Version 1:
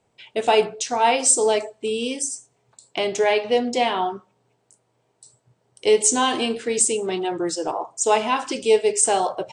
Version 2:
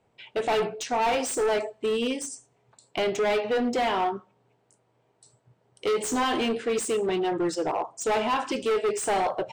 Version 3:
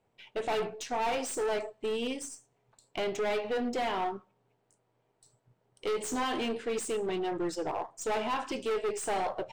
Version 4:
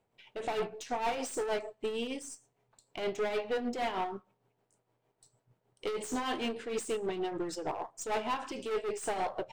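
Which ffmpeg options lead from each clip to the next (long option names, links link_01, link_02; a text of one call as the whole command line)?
ffmpeg -i in.wav -af "volume=21.5dB,asoftclip=hard,volume=-21.5dB,bass=frequency=250:gain=0,treble=frequency=4000:gain=-9" out.wav
ffmpeg -i in.wav -af "aeval=exprs='if(lt(val(0),0),0.708*val(0),val(0))':channel_layout=same,volume=-5dB" out.wav
ffmpeg -i in.wav -af "tremolo=f=6.5:d=0.54" out.wav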